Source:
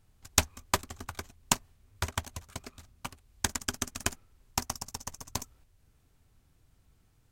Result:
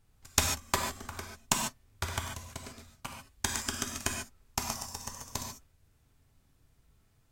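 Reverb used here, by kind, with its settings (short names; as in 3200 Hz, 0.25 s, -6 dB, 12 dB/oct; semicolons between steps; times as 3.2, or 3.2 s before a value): non-linear reverb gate 0.17 s flat, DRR 1 dB; gain -2.5 dB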